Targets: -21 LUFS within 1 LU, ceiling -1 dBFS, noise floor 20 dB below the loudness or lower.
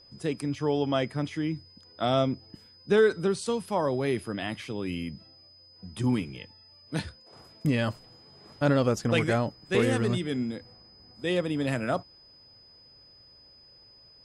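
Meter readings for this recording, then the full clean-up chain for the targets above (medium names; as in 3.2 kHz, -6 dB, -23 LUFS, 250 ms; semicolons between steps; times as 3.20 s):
steady tone 5 kHz; tone level -53 dBFS; loudness -28.5 LUFS; peak level -11.5 dBFS; loudness target -21.0 LUFS
-> band-stop 5 kHz, Q 30; trim +7.5 dB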